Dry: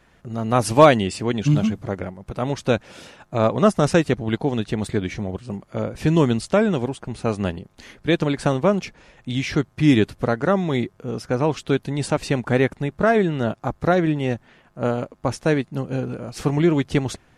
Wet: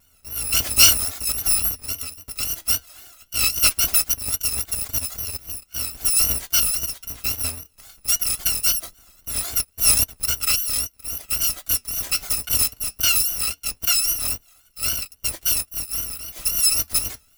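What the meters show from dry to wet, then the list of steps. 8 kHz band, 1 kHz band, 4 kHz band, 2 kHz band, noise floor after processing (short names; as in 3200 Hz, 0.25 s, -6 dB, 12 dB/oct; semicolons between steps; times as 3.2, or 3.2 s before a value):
+19.0 dB, -13.5 dB, +10.5 dB, -2.0 dB, -59 dBFS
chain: FFT order left unsorted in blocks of 256 samples; vibrato 3.7 Hz 97 cents; flange 0.2 Hz, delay 1.1 ms, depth 7.2 ms, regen -75%; gain +3 dB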